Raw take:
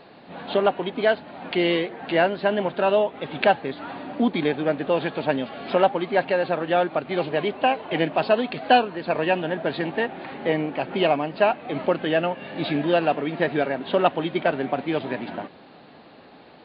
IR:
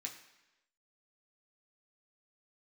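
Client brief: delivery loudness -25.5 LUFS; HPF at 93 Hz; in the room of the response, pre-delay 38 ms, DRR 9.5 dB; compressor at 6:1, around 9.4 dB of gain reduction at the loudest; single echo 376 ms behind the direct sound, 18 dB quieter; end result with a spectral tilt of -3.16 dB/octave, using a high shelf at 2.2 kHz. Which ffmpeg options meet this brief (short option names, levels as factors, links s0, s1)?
-filter_complex "[0:a]highpass=93,highshelf=f=2200:g=3.5,acompressor=threshold=0.0794:ratio=6,aecho=1:1:376:0.126,asplit=2[s0][s1];[1:a]atrim=start_sample=2205,adelay=38[s2];[s1][s2]afir=irnorm=-1:irlink=0,volume=0.447[s3];[s0][s3]amix=inputs=2:normalize=0,volume=1.33"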